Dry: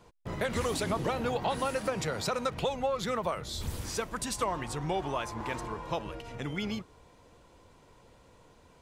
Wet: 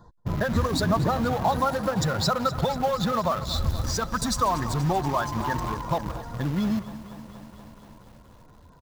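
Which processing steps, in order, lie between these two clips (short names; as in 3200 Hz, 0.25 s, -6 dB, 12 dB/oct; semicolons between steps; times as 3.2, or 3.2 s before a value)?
spectral contrast raised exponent 1.5; Chebyshev band-stop 1800–3600 Hz, order 3; bell 450 Hz -10 dB 0.87 oct; in parallel at -10 dB: bit-crush 6-bit; on the sum: bell 8900 Hz -10.5 dB 0.36 oct; outdoor echo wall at 30 m, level -23 dB; lo-fi delay 0.239 s, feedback 80%, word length 9-bit, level -15 dB; gain +8.5 dB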